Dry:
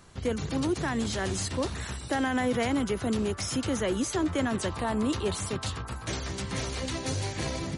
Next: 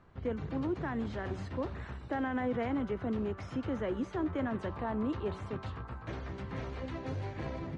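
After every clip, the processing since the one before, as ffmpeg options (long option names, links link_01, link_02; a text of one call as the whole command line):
ffmpeg -i in.wav -af "lowpass=1800,bandreject=frequency=191:width_type=h:width=4,bandreject=frequency=382:width_type=h:width=4,bandreject=frequency=573:width_type=h:width=4,bandreject=frequency=764:width_type=h:width=4,bandreject=frequency=955:width_type=h:width=4,bandreject=frequency=1146:width_type=h:width=4,bandreject=frequency=1337:width_type=h:width=4,bandreject=frequency=1528:width_type=h:width=4,bandreject=frequency=1719:width_type=h:width=4,bandreject=frequency=1910:width_type=h:width=4,bandreject=frequency=2101:width_type=h:width=4,bandreject=frequency=2292:width_type=h:width=4,bandreject=frequency=2483:width_type=h:width=4,bandreject=frequency=2674:width_type=h:width=4,bandreject=frequency=2865:width_type=h:width=4,bandreject=frequency=3056:width_type=h:width=4,bandreject=frequency=3247:width_type=h:width=4,bandreject=frequency=3438:width_type=h:width=4,bandreject=frequency=3629:width_type=h:width=4,bandreject=frequency=3820:width_type=h:width=4,bandreject=frequency=4011:width_type=h:width=4,bandreject=frequency=4202:width_type=h:width=4,bandreject=frequency=4393:width_type=h:width=4,bandreject=frequency=4584:width_type=h:width=4,bandreject=frequency=4775:width_type=h:width=4,bandreject=frequency=4966:width_type=h:width=4,bandreject=frequency=5157:width_type=h:width=4,bandreject=frequency=5348:width_type=h:width=4,bandreject=frequency=5539:width_type=h:width=4,bandreject=frequency=5730:width_type=h:width=4,bandreject=frequency=5921:width_type=h:width=4,bandreject=frequency=6112:width_type=h:width=4,bandreject=frequency=6303:width_type=h:width=4,bandreject=frequency=6494:width_type=h:width=4,volume=-5.5dB" out.wav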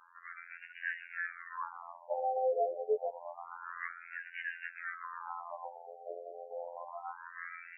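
ffmpeg -i in.wav -af "afftfilt=real='hypot(re,im)*cos(PI*b)':imag='0':win_size=2048:overlap=0.75,aemphasis=mode=production:type=75fm,afftfilt=real='re*between(b*sr/1024,540*pow(2100/540,0.5+0.5*sin(2*PI*0.28*pts/sr))/1.41,540*pow(2100/540,0.5+0.5*sin(2*PI*0.28*pts/sr))*1.41)':imag='im*between(b*sr/1024,540*pow(2100/540,0.5+0.5*sin(2*PI*0.28*pts/sr))/1.41,540*pow(2100/540,0.5+0.5*sin(2*PI*0.28*pts/sr))*1.41)':win_size=1024:overlap=0.75,volume=10dB" out.wav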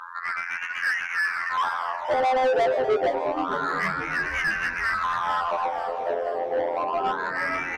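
ffmpeg -i in.wav -filter_complex "[0:a]asplit=2[link_01][link_02];[link_02]highpass=frequency=720:poles=1,volume=25dB,asoftclip=type=tanh:threshold=-21.5dB[link_03];[link_01][link_03]amix=inputs=2:normalize=0,lowpass=frequency=2600:poles=1,volume=-6dB,asplit=7[link_04][link_05][link_06][link_07][link_08][link_09][link_10];[link_05]adelay=472,afreqshift=-120,volume=-10.5dB[link_11];[link_06]adelay=944,afreqshift=-240,volume=-15.5dB[link_12];[link_07]adelay=1416,afreqshift=-360,volume=-20.6dB[link_13];[link_08]adelay=1888,afreqshift=-480,volume=-25.6dB[link_14];[link_09]adelay=2360,afreqshift=-600,volume=-30.6dB[link_15];[link_10]adelay=2832,afreqshift=-720,volume=-35.7dB[link_16];[link_04][link_11][link_12][link_13][link_14][link_15][link_16]amix=inputs=7:normalize=0,volume=6dB" out.wav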